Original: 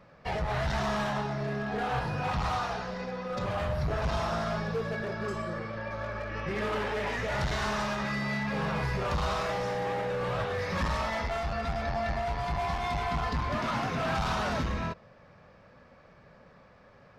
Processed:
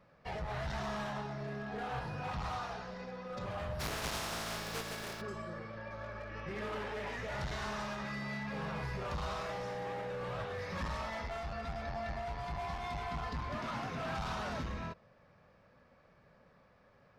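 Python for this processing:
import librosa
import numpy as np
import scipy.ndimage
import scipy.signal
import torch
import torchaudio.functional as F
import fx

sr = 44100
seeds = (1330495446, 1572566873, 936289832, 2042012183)

y = fx.spec_flatten(x, sr, power=0.42, at=(3.79, 5.2), fade=0.02)
y = y * 10.0 ** (-8.5 / 20.0)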